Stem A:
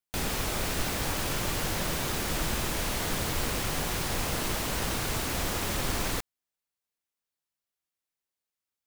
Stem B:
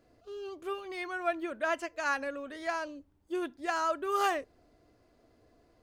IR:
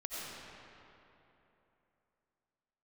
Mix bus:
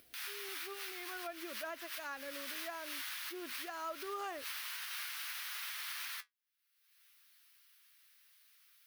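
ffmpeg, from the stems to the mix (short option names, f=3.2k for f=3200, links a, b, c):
-filter_complex "[0:a]highpass=f=1.4k:w=0.5412,highpass=f=1.4k:w=1.3066,equalizer=f=7.4k:t=o:w=0.55:g=-11.5,flanger=delay=7.4:depth=5.9:regen=54:speed=0.54:shape=triangular,volume=1dB[a];[1:a]agate=range=-28dB:threshold=-56dB:ratio=16:detection=peak,volume=-9.5dB,asplit=2[b][c];[c]apad=whole_len=390880[d];[a][d]sidechaincompress=threshold=-53dB:ratio=6:attack=9.5:release=107[e];[e][b]amix=inputs=2:normalize=0,acompressor=mode=upward:threshold=-43dB:ratio=2.5,alimiter=level_in=8.5dB:limit=-24dB:level=0:latency=1:release=247,volume=-8.5dB"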